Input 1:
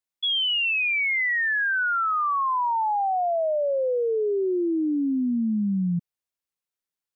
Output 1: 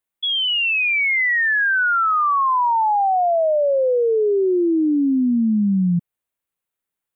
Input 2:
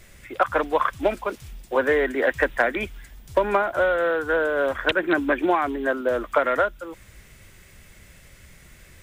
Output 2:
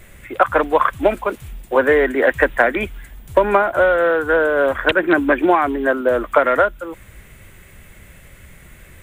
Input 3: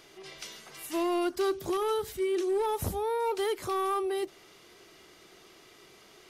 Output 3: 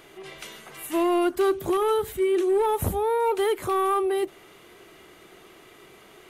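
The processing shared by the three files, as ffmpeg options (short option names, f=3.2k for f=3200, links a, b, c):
-af "equalizer=f=5.2k:w=1.6:g=-12,volume=6.5dB"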